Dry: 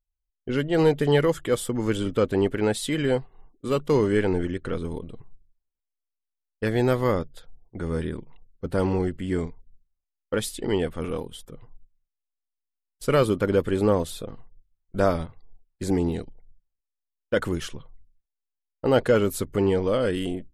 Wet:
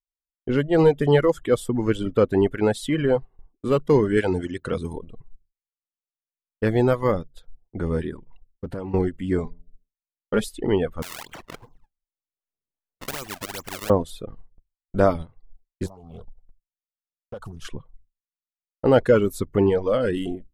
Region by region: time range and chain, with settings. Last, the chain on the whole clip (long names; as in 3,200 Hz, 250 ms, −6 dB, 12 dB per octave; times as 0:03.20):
0:04.17–0:04.96: high-pass filter 45 Hz + high-shelf EQ 3,300 Hz +11.5 dB
0:08.17–0:08.94: downward compressor 10 to 1, threshold −30 dBFS + highs frequency-modulated by the lows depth 0.2 ms
0:09.44–0:10.44: comb filter 4.9 ms, depth 57% + hum removal 85.61 Hz, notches 8
0:11.02–0:13.90: parametric band 3,600 Hz −5 dB 0.27 octaves + sample-and-hold swept by an LFO 31×, swing 160% 2.6 Hz + every bin compressed towards the loudest bin 4 to 1
0:15.86–0:17.65: downward compressor 10 to 1, threshold −31 dBFS + phaser with its sweep stopped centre 790 Hz, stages 4 + highs frequency-modulated by the lows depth 0.51 ms
whole clip: reverb reduction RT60 1.1 s; noise gate with hold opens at −48 dBFS; high-shelf EQ 2,400 Hz −9.5 dB; level +4.5 dB